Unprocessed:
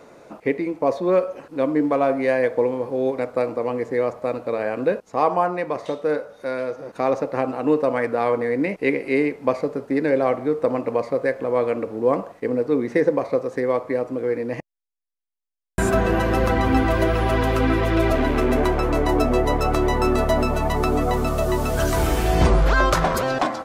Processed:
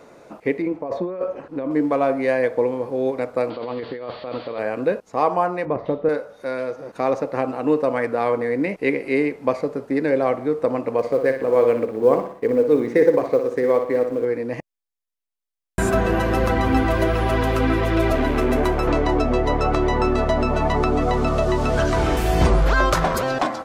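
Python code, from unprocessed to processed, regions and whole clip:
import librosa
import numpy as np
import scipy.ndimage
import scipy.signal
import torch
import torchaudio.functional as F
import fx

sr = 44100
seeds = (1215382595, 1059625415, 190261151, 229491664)

y = fx.chain(x, sr, fx.lowpass(hz=1600.0, slope=6),
    fx.over_compress(threshold_db=-25.0, ratio=-1.0), at=(0.62, 1.71))
y = fx.chain(y, sr, fx.crossing_spikes(level_db=-23.0),
    fx.cheby_ripple(hz=4600.0, ripple_db=3),
    fx.over_compress(threshold_db=-29.0, ratio=-1.0), at=(3.5, 4.59))
y = fx.chain(y, sr, fx.moving_average(points=6),
    fx.tilt_eq(slope=-3.0), at=(5.65, 6.09))
y = fx.chain(y, sr, fx.law_mismatch(coded='A'),
    fx.peak_eq(hz=450.0, db=6.0, octaves=0.41),
    fx.echo_feedback(ms=60, feedback_pct=44, wet_db=-8), at=(10.98, 14.25))
y = fx.chain(y, sr, fx.lowpass(hz=5300.0, slope=12),
    fx.band_squash(depth_pct=100), at=(18.87, 22.17))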